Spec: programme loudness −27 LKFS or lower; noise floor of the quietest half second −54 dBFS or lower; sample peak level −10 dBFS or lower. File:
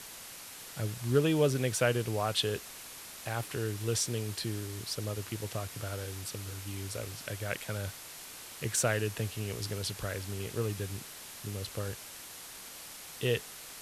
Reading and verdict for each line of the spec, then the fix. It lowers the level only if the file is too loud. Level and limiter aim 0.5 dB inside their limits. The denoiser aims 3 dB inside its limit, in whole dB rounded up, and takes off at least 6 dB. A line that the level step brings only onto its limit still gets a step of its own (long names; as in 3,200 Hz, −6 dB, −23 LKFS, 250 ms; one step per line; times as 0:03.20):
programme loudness −34.5 LKFS: in spec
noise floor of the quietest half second −47 dBFS: out of spec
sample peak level −14.0 dBFS: in spec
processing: broadband denoise 10 dB, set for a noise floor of −47 dBFS